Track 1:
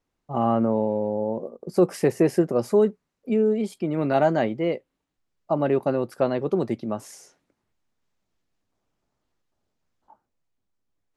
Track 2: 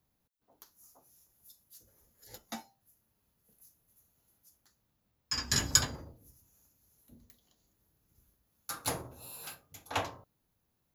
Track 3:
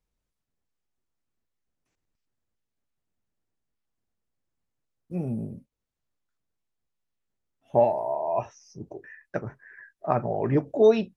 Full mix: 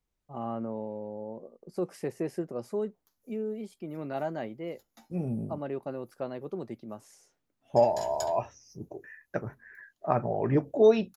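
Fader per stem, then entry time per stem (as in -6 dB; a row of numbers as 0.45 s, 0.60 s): -13.0 dB, -15.5 dB, -2.0 dB; 0.00 s, 2.45 s, 0.00 s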